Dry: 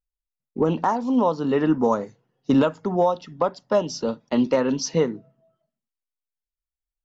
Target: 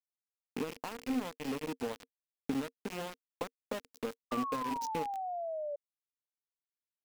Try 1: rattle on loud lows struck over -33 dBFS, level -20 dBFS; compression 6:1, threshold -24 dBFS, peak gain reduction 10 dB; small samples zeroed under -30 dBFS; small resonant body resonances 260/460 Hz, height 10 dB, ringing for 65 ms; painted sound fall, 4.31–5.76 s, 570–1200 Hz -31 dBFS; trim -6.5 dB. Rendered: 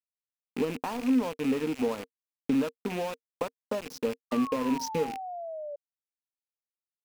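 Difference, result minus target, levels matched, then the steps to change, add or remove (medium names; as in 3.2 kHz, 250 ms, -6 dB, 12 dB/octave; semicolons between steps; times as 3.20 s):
compression: peak gain reduction -6 dB
change: compression 6:1, threshold -31.5 dBFS, peak gain reduction 16.5 dB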